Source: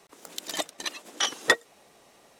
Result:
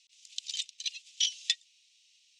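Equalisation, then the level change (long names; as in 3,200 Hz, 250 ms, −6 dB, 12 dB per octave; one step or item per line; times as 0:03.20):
Butterworth high-pass 2,600 Hz 48 dB per octave
low-pass filter 6,700 Hz 24 dB per octave
0.0 dB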